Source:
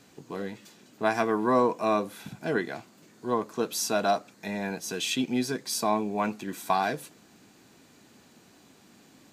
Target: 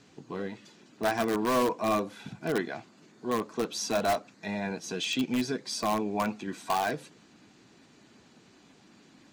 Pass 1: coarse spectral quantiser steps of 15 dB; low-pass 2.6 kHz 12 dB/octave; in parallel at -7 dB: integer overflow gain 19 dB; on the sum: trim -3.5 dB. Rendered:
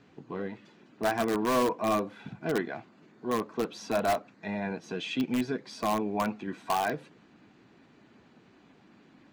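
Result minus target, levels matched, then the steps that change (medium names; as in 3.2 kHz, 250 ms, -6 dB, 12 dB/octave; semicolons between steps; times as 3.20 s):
8 kHz band -5.5 dB
change: low-pass 6.2 kHz 12 dB/octave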